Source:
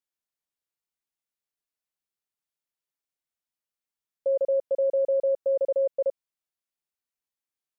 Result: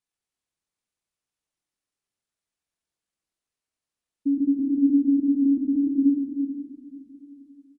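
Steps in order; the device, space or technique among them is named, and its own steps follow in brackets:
monster voice (pitch shifter −11.5 semitones; low-shelf EQ 250 Hz +5 dB; single-tap delay 84 ms −7.5 dB; convolution reverb RT60 2.5 s, pre-delay 97 ms, DRR 3 dB)

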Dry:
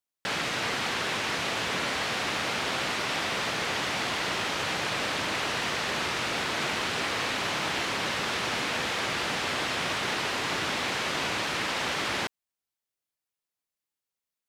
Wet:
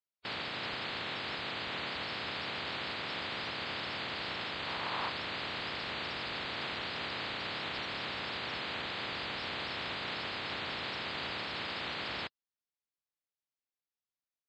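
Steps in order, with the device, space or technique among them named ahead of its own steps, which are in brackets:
clip after many re-uploads (low-pass filter 5,200 Hz 24 dB per octave; spectral magnitudes quantised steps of 30 dB)
0:04.65–0:05.08: parametric band 970 Hz +3.5 dB → +12.5 dB 0.77 octaves
level −8 dB

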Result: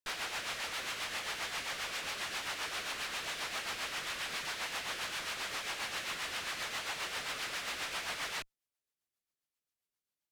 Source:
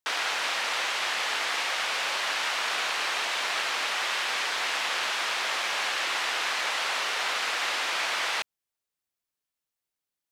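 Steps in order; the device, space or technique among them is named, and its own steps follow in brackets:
overdriven rotary cabinet (tube saturation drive 34 dB, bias 0.45; rotating-speaker cabinet horn 7.5 Hz)

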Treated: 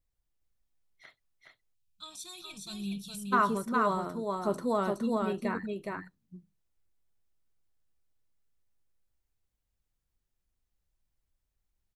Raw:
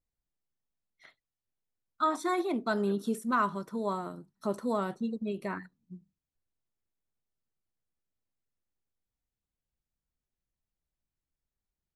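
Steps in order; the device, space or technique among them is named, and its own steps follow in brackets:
low shelf boost with a cut just above (low-shelf EQ 86 Hz +8 dB; parametric band 210 Hz −3.5 dB 0.91 octaves)
single-tap delay 417 ms −3 dB
gain on a spectral selection 0:01.75–0:03.33, 210–2,300 Hz −27 dB
level +2 dB

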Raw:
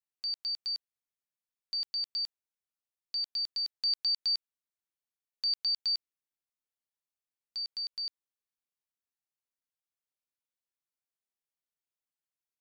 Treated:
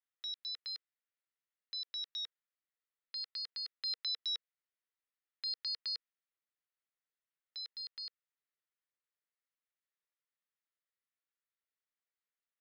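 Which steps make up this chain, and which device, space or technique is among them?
voice changer toy (ring modulator whose carrier an LFO sweeps 580 Hz, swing 45%, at 0.43 Hz; loudspeaker in its box 460–4,100 Hz, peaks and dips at 480 Hz +5 dB, 810 Hz −8 dB, 1,300 Hz +5 dB, 1,900 Hz +7 dB)

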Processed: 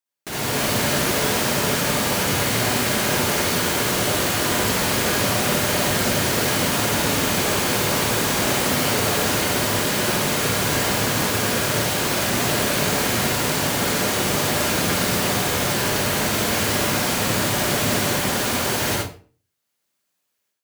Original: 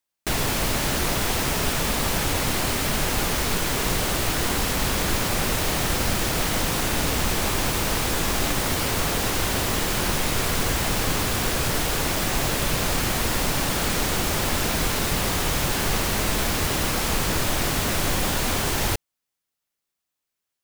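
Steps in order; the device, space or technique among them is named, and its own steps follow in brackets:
far laptop microphone (convolution reverb RT60 0.40 s, pre-delay 50 ms, DRR −2.5 dB; high-pass filter 110 Hz 12 dB per octave; automatic gain control)
level −7 dB

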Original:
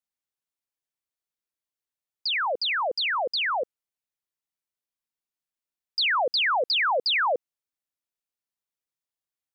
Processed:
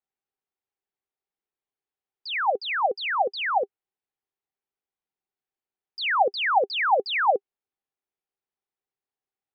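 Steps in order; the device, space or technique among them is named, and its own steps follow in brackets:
inside a cardboard box (low-pass filter 2,700 Hz 12 dB per octave; hollow resonant body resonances 400/780 Hz, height 11 dB, ringing for 45 ms)

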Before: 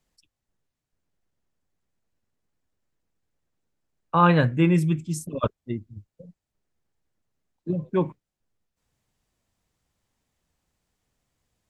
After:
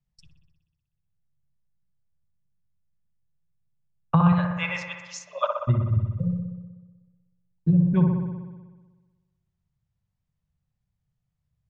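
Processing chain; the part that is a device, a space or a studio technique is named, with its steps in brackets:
0:04.32–0:05.59: Chebyshev band-pass filter 580–6,800 Hz, order 5
noise gate with hold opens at −50 dBFS
jukebox (low-pass filter 6,400 Hz; low shelf with overshoot 210 Hz +11.5 dB, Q 3; downward compressor 5 to 1, threshold −25 dBFS, peak gain reduction 18.5 dB)
delay with a low-pass on its return 62 ms, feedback 72%, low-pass 1,800 Hz, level −4 dB
level +6 dB

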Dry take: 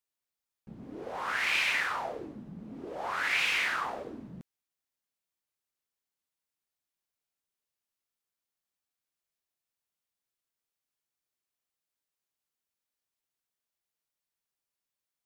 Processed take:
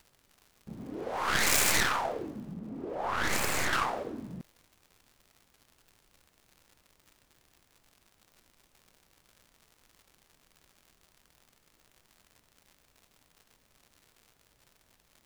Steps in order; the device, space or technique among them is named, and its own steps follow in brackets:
record under a worn stylus (stylus tracing distortion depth 0.38 ms; surface crackle 130 per second −49 dBFS; pink noise bed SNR 34 dB)
0:02.54–0:03.73: high-shelf EQ 2,300 Hz −9 dB
level +3.5 dB

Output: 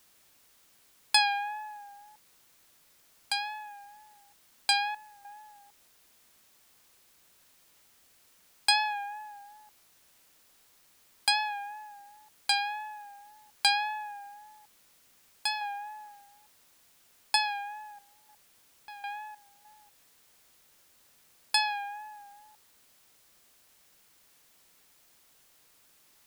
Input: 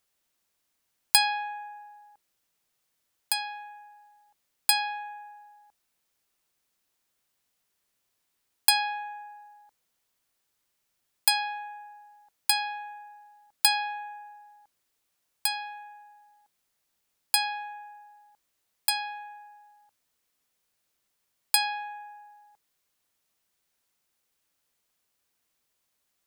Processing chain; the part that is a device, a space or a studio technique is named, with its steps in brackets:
worn cassette (low-pass filter 6,200 Hz 12 dB per octave; tape wow and flutter; tape dropouts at 0:04.95/0:17.99/0:18.74/0:19.35, 296 ms −13 dB; white noise bed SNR 26 dB)
0:15.61–0:17.36: dynamic equaliser 770 Hz, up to +5 dB, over −55 dBFS, Q 0.74

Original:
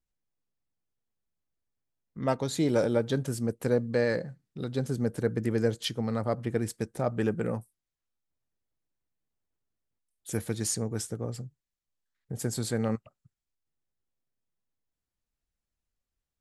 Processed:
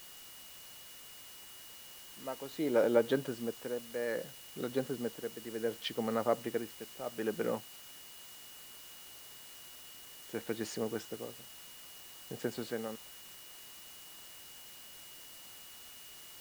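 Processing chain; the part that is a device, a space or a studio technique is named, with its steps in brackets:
shortwave radio (band-pass filter 300–2,900 Hz; amplitude tremolo 0.65 Hz, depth 79%; steady tone 2,900 Hz −58 dBFS; white noise bed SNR 13 dB)
level +1 dB

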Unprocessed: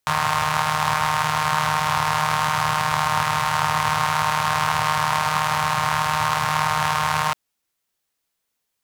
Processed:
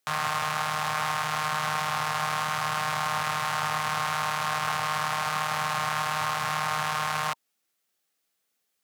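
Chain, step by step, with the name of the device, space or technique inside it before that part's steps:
PA system with an anti-feedback notch (high-pass filter 160 Hz 12 dB per octave; Butterworth band-reject 970 Hz, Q 7.3; brickwall limiter −13.5 dBFS, peak gain reduction 8.5 dB)

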